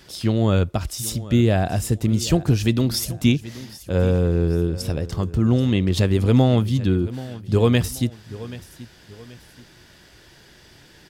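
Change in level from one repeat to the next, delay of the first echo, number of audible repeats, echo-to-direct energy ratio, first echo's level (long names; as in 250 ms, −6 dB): −8.5 dB, 781 ms, 2, −16.5 dB, −17.0 dB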